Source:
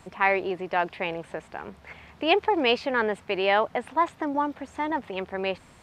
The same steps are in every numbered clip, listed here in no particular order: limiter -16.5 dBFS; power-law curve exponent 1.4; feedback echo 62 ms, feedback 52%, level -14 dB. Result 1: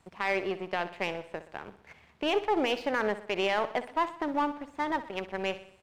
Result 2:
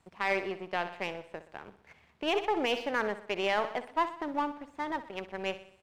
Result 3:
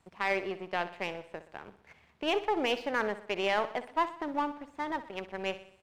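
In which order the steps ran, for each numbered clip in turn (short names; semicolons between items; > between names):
limiter > power-law curve > feedback echo; power-law curve > feedback echo > limiter; power-law curve > limiter > feedback echo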